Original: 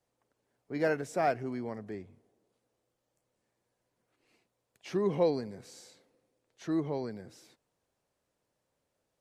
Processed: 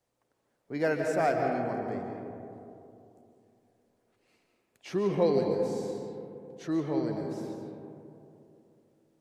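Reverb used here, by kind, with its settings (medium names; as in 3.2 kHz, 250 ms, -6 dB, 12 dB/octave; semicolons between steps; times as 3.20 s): algorithmic reverb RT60 2.9 s, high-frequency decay 0.3×, pre-delay 100 ms, DRR 2 dB; trim +1 dB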